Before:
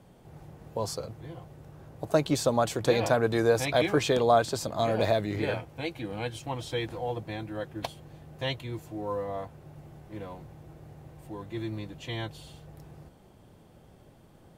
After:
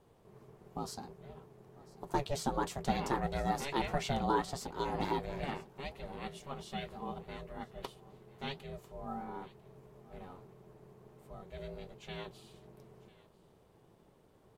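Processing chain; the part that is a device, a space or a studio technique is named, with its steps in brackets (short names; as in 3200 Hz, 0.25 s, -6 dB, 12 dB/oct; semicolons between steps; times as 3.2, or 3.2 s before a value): alien voice (ring modulator 280 Hz; flange 1.5 Hz, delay 4.6 ms, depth 6 ms, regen -65%); echo 0.996 s -21 dB; gain -2 dB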